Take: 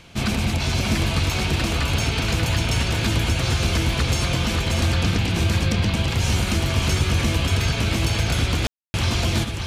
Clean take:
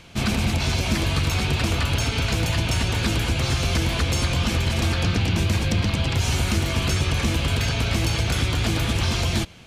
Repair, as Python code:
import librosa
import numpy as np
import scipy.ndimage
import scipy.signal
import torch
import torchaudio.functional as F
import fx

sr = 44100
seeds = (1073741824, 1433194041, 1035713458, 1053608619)

y = fx.fix_ambience(x, sr, seeds[0], print_start_s=0.0, print_end_s=0.5, start_s=8.67, end_s=8.94)
y = fx.fix_echo_inverse(y, sr, delay_ms=583, level_db=-5.5)